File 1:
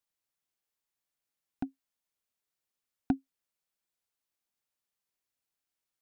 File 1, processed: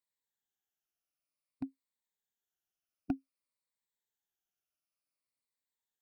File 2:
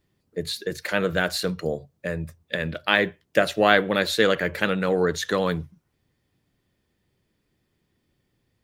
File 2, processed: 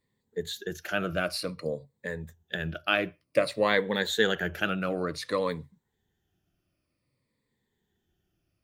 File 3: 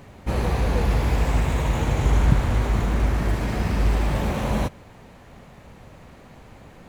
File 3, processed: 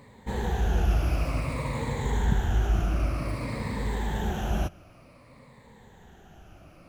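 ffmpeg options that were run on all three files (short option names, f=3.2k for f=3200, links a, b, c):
-af "afftfilt=real='re*pow(10,12/40*sin(2*PI*(0.98*log(max(b,1)*sr/1024/100)/log(2)-(-0.54)*(pts-256)/sr)))':imag='im*pow(10,12/40*sin(2*PI*(0.98*log(max(b,1)*sr/1024/100)/log(2)-(-0.54)*(pts-256)/sr)))':win_size=1024:overlap=0.75,volume=-7.5dB"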